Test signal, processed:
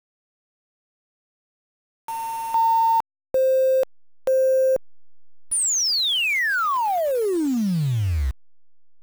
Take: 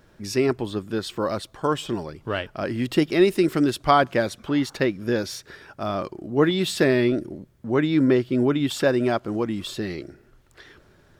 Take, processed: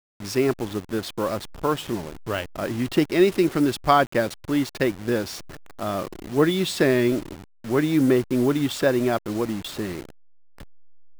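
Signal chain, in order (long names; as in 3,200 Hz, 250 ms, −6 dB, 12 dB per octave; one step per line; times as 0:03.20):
hold until the input has moved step −32.5 dBFS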